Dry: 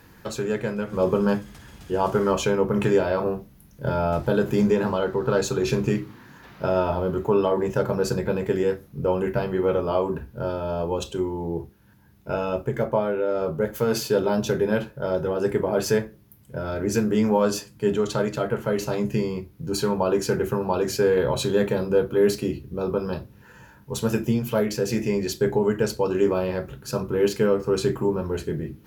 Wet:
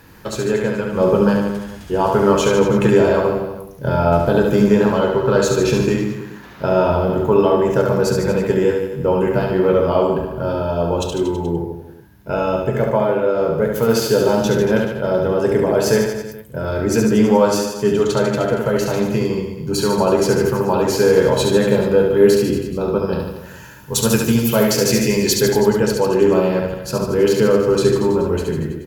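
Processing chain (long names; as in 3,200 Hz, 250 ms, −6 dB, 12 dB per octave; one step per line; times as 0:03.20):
0:23.19–0:25.62: high-shelf EQ 2,700 Hz +10 dB
reverse bouncing-ball delay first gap 70 ms, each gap 1.1×, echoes 5
level +5 dB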